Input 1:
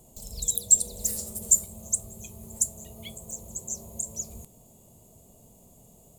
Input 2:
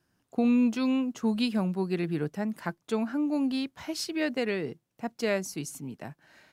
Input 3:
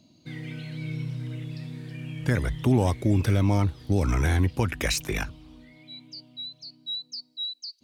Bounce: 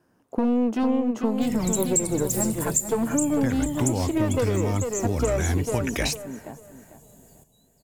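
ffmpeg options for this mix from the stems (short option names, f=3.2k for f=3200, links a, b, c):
-filter_complex "[0:a]adelay=1250,volume=2dB,asplit=2[a][b];[b]volume=-10.5dB[c];[1:a]aeval=exprs='clip(val(0),-1,0.0251)':c=same,equalizer=f=250:t=o:w=1:g=6,equalizer=f=500:t=o:w=1:g=9,equalizer=f=1k:t=o:w=1:g=6,equalizer=f=4k:t=o:w=1:g=-5,volume=3dB,asplit=3[d][e][f];[e]volume=-8dB[g];[2:a]adelay=1150,volume=1dB[h];[f]apad=whole_len=400601[i];[h][i]sidechaingate=range=-33dB:threshold=-39dB:ratio=16:detection=peak[j];[c][g]amix=inputs=2:normalize=0,aecho=0:1:447|894|1341|1788:1|0.27|0.0729|0.0197[k];[a][d][j][k]amix=inputs=4:normalize=0,acompressor=threshold=-20dB:ratio=4"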